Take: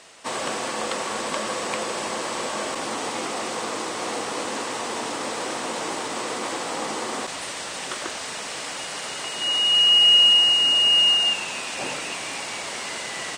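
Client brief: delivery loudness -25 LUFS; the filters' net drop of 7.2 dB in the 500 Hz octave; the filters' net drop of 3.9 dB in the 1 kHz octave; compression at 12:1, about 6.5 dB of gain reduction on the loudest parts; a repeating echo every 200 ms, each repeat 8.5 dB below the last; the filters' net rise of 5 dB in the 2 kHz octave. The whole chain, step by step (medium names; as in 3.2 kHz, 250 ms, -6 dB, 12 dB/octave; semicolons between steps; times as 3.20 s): peaking EQ 500 Hz -8 dB; peaking EQ 1 kHz -5 dB; peaking EQ 2 kHz +8.5 dB; compression 12:1, threshold -16 dBFS; feedback delay 200 ms, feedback 38%, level -8.5 dB; trim -3.5 dB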